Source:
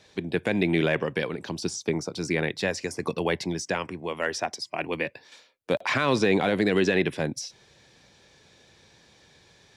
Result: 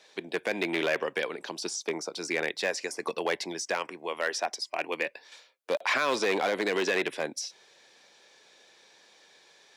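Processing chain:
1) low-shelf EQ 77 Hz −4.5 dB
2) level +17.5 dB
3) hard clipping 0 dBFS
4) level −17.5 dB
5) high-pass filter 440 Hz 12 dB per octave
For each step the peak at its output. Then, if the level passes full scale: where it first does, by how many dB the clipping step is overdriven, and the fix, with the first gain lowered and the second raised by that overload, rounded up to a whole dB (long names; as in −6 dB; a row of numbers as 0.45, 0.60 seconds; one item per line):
−11.0, +6.5, 0.0, −17.5, −14.0 dBFS
step 2, 6.5 dB
step 2 +10.5 dB, step 4 −10.5 dB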